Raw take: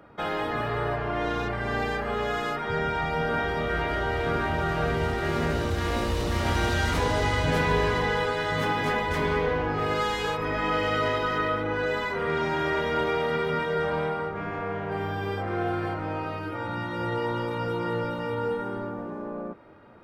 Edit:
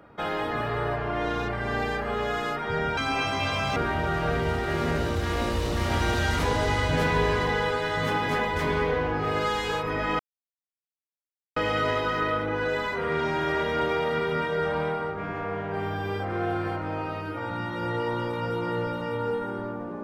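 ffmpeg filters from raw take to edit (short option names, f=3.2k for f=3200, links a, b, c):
-filter_complex "[0:a]asplit=4[a][b][c][d];[a]atrim=end=2.974[e];[b]atrim=start=2.97:end=4.31,asetpts=PTS-STARTPTS,asetrate=74529,aresample=44100[f];[c]atrim=start=4.306:end=10.74,asetpts=PTS-STARTPTS,afade=t=out:st=6.43:d=0.004:c=hsin,apad=pad_dur=1.37[g];[d]atrim=start=10.74,asetpts=PTS-STARTPTS,afade=t=in:d=0.004:c=hsin[h];[e][f]acrossfade=d=0.004:c1=hsin:c2=hsin[i];[g][h]concat=n=2:v=0:a=1[j];[i][j]acrossfade=d=0.004:c1=hsin:c2=hsin"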